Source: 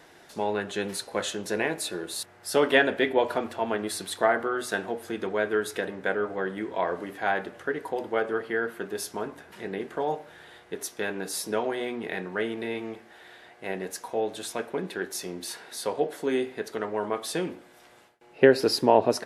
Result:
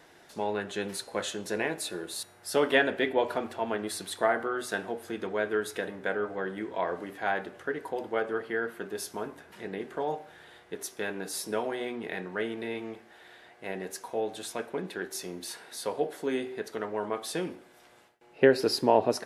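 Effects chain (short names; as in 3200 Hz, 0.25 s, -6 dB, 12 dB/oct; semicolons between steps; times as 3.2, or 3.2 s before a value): de-hum 384.4 Hz, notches 35; gain -3 dB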